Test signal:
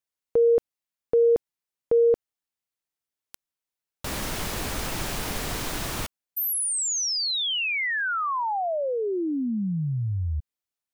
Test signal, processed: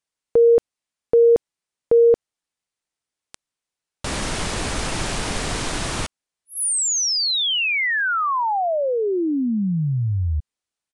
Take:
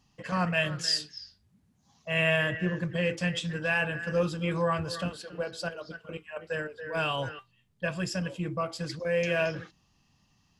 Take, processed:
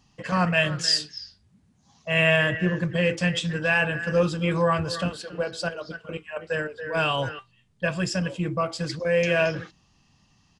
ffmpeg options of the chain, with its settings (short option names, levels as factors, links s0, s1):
-af "aresample=22050,aresample=44100,volume=1.88"